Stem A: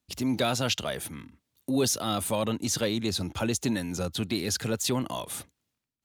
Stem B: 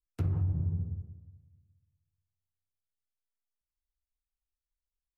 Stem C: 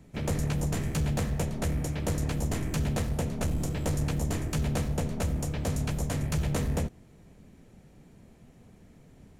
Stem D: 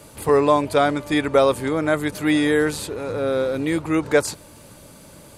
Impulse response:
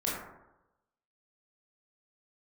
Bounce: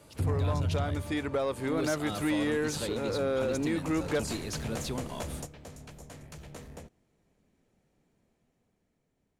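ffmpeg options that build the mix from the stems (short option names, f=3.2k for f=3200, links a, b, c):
-filter_complex "[0:a]volume=-14dB,asplit=2[a][b];[1:a]volume=2dB[c];[2:a]bass=f=250:g=-7,treble=f=4k:g=3,volume=-10dB,afade=t=in:st=3.73:d=0.56:silence=0.316228[d];[3:a]acompressor=threshold=-21dB:ratio=3,volume=-10.5dB[e];[b]apad=whole_len=414107[f];[d][f]sidechaingate=range=-9dB:threshold=-57dB:ratio=16:detection=peak[g];[a][c][g][e]amix=inputs=4:normalize=0,highshelf=f=7.3k:g=-6,dynaudnorm=f=180:g=13:m=6dB,asoftclip=type=tanh:threshold=-21dB"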